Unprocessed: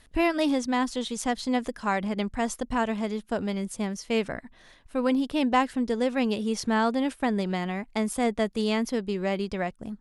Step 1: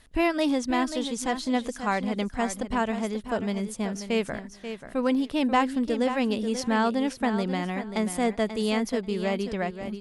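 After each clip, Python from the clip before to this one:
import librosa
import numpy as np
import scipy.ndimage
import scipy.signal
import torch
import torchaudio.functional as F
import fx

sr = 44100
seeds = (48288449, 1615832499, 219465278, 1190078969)

y = fx.echo_feedback(x, sr, ms=536, feedback_pct=17, wet_db=-10.0)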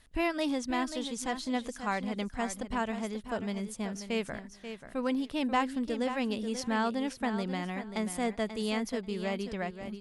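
y = fx.peak_eq(x, sr, hz=400.0, db=-2.5, octaves=2.2)
y = F.gain(torch.from_numpy(y), -4.5).numpy()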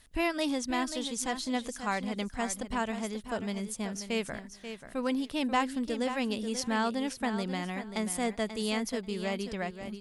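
y = fx.high_shelf(x, sr, hz=4200.0, db=6.5)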